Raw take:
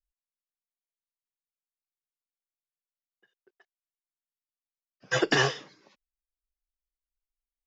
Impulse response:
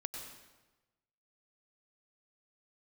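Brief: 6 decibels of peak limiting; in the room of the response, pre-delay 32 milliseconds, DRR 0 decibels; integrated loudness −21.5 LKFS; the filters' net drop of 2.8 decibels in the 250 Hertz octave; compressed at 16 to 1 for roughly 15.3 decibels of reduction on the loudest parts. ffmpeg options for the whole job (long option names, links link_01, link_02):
-filter_complex "[0:a]equalizer=frequency=250:width_type=o:gain=-4.5,acompressor=threshold=-35dB:ratio=16,alimiter=level_in=6dB:limit=-24dB:level=0:latency=1,volume=-6dB,asplit=2[link_01][link_02];[1:a]atrim=start_sample=2205,adelay=32[link_03];[link_02][link_03]afir=irnorm=-1:irlink=0,volume=1dB[link_04];[link_01][link_04]amix=inputs=2:normalize=0,volume=19.5dB"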